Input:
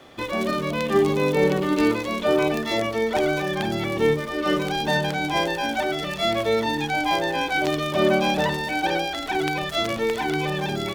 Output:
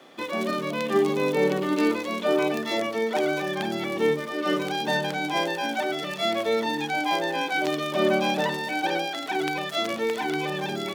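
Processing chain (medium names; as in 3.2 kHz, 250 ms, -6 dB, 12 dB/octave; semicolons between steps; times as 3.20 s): high-pass 170 Hz 24 dB/octave; trim -2.5 dB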